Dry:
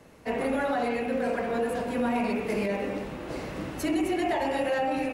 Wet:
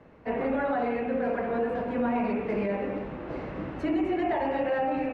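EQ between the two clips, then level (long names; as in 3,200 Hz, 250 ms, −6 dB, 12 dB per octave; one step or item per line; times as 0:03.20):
low-pass filter 2,000 Hz 12 dB per octave
0.0 dB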